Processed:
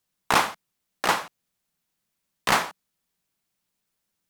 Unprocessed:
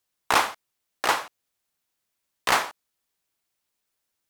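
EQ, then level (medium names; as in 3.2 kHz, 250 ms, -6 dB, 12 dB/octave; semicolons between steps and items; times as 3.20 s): bass shelf 61 Hz +6 dB; peaking EQ 180 Hz +11 dB 0.77 oct; 0.0 dB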